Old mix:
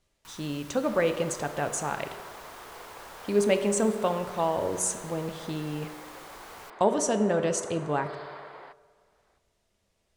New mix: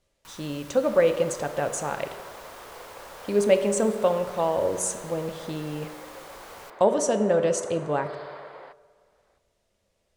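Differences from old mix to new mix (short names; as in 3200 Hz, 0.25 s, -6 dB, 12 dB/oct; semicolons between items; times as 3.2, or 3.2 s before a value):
first sound: send on; master: add bell 540 Hz +7.5 dB 0.37 oct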